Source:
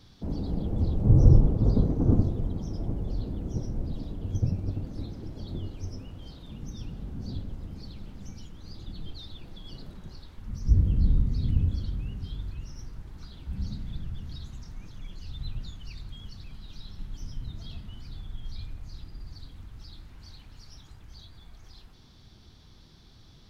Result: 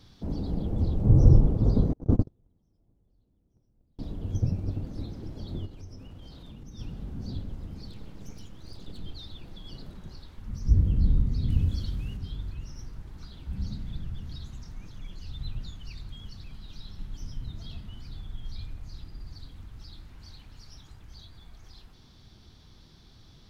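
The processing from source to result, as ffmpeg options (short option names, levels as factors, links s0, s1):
-filter_complex "[0:a]asettb=1/sr,asplit=3[s0][s1][s2];[s0]atrim=end=1.934[s3];[s1]atrim=start=1.93:end=3.99,asetpts=PTS-STARTPTS,afade=t=in:d=0.004:c=qsin,afade=t=out:st=2.056:d=0.004:c=qsin,agate=range=0.0141:threshold=0.0891:ratio=16:release=100:detection=peak[s4];[s2]atrim=start=3.986[s5];[s3][s4]acrossfade=d=0.004:c1=hsin:c2=qsin[s6];[s6][s5]acrossfade=d=0.004:c1=qsin:c2=hsin,asplit=3[s7][s8][s9];[s7]afade=t=out:st=5.65:d=0.02[s10];[s8]acompressor=threshold=0.00891:ratio=3:attack=3.2:release=140:knee=1:detection=peak,afade=t=in:st=5.65:d=0.02,afade=t=out:st=6.78:d=0.02[s11];[s9]afade=t=in:st=6.78:d=0.02[s12];[s10][s11][s12]amix=inputs=3:normalize=0,asettb=1/sr,asplit=3[s13][s14][s15];[s13]atrim=end=7.904[s16];[s14]atrim=start=7.9:end=9.04,asetpts=PTS-STARTPTS,afade=t=in:d=0.004:c=qsin,afade=t=out:st=1.136:d=0.004:c=qsin,aeval=exprs='abs(val(0))':c=same[s17];[s15]atrim=start=9.036[s18];[s16][s17]acrossfade=d=0.004:c1=hsin:c2=qsin[s19];[s19][s18]acrossfade=d=0.004:c1=qsin:c2=hsin,asettb=1/sr,asplit=3[s20][s21][s22];[s20]atrim=end=11.504[s23];[s21]atrim=start=11.5:end=12.17,asetpts=PTS-STARTPTS,afade=t=in:d=0.004:c=qsin,afade=t=out:st=0.666:d=0.004:c=qsin,highshelf=f=2400:g=8[s24];[s22]atrim=start=12.166[s25];[s23][s24]acrossfade=d=0.004:c1=hsin:c2=qsin[s26];[s26][s25]acrossfade=d=0.004:c1=qsin:c2=hsin"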